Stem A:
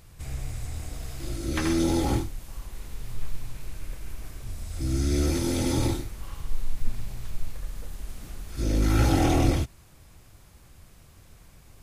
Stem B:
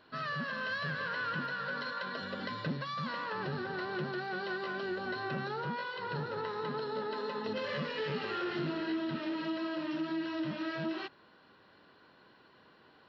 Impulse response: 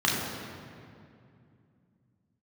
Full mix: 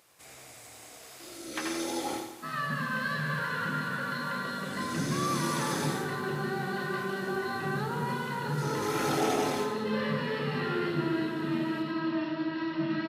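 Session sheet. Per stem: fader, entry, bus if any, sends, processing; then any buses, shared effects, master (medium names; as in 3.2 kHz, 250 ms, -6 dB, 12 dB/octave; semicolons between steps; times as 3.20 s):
-3.5 dB, 0.00 s, no send, echo send -7 dB, vibrato 1.8 Hz 14 cents; high-pass 430 Hz 12 dB/octave
-4.0 dB, 2.30 s, send -9 dB, no echo send, none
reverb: on, RT60 2.5 s, pre-delay 3 ms
echo: feedback delay 86 ms, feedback 51%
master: none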